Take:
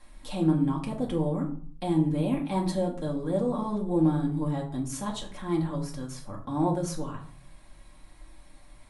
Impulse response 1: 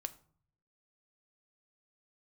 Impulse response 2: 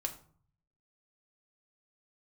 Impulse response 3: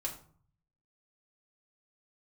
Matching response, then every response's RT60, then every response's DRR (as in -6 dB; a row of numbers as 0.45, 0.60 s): 3; 0.50, 0.50, 0.50 s; 9.0, 2.5, -2.0 dB